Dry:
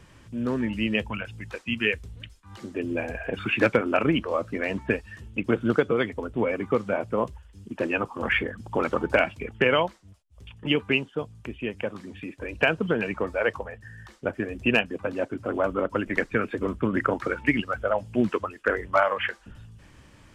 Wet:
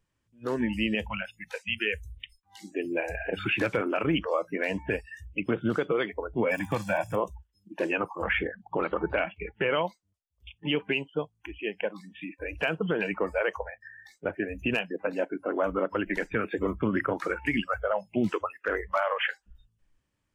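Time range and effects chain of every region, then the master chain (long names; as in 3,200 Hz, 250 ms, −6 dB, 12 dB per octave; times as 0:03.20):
0:06.50–0:07.15: high-shelf EQ 2,200 Hz +6.5 dB + comb filter 1.2 ms, depth 76% + surface crackle 60 per second −35 dBFS
0:08.24–0:09.85: high-frequency loss of the air 150 metres + notch filter 5,200 Hz, Q 6.3
whole clip: noise reduction from a noise print of the clip's start 27 dB; high-shelf EQ 7,200 Hz +7 dB; brickwall limiter −16.5 dBFS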